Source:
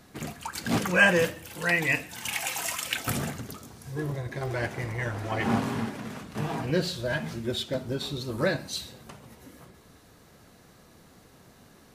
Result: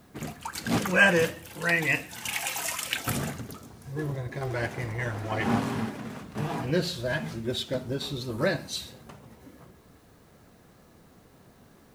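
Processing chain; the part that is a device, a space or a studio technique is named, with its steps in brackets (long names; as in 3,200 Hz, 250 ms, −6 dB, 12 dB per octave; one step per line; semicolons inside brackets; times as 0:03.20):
plain cassette with noise reduction switched in (one half of a high-frequency compander decoder only; tape wow and flutter 28 cents; white noise bed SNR 38 dB)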